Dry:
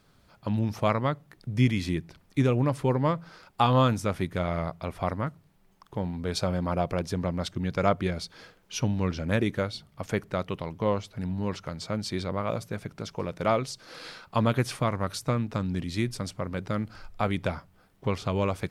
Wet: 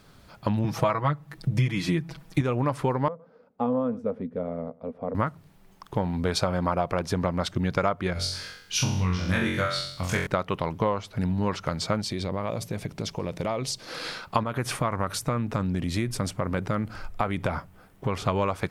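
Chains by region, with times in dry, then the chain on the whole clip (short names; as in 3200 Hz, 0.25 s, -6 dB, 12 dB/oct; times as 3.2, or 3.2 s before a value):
0.64–2.41 bell 140 Hz +8 dB 0.21 oct + comb 6.2 ms, depth 85%
3.08–5.15 double band-pass 340 Hz, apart 0.91 oct + echo 0.111 s -23 dB
8.13–10.27 bell 520 Hz -11.5 dB 2.5 oct + flutter echo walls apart 3.8 m, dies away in 0.63 s
12.01–13.88 bell 1400 Hz -8 dB 0.47 oct + compressor 10:1, threshold -33 dBFS
14.43–18.28 bell 4500 Hz -5 dB 1.1 oct + compressor 2.5:1, threshold -30 dBFS
whole clip: dynamic EQ 1100 Hz, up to +8 dB, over -41 dBFS, Q 0.75; compressor 6:1, threshold -30 dBFS; gain +8 dB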